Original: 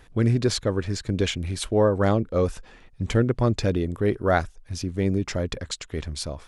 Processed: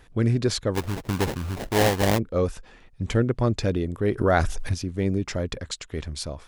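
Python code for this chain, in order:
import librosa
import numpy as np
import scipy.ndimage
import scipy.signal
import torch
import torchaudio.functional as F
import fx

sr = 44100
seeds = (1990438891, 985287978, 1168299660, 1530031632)

y = fx.sample_hold(x, sr, seeds[0], rate_hz=1300.0, jitter_pct=20, at=(0.74, 2.17), fade=0.02)
y = fx.env_flatten(y, sr, amount_pct=70, at=(4.17, 4.73), fade=0.02)
y = y * 10.0 ** (-1.0 / 20.0)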